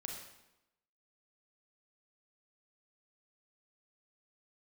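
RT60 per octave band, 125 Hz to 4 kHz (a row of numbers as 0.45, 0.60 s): 0.85, 1.0, 0.90, 0.90, 0.85, 0.75 s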